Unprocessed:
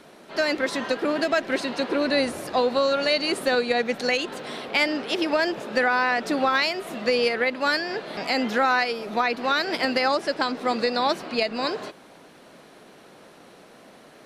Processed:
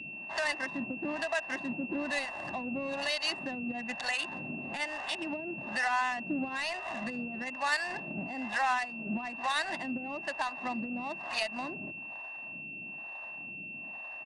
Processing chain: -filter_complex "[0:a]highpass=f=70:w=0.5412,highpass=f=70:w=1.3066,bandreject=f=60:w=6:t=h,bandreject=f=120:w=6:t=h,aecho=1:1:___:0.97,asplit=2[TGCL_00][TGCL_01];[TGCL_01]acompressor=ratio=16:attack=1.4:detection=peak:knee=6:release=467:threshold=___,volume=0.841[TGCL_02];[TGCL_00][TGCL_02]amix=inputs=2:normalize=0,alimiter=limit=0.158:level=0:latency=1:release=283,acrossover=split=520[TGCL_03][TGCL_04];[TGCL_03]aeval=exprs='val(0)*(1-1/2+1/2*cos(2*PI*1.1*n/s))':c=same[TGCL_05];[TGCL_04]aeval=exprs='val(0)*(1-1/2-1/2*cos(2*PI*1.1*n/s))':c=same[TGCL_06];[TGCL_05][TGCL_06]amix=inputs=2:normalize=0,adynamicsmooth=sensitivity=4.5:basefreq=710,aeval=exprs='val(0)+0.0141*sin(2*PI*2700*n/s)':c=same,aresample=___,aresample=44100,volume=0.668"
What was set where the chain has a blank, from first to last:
1.1, 0.0282, 22050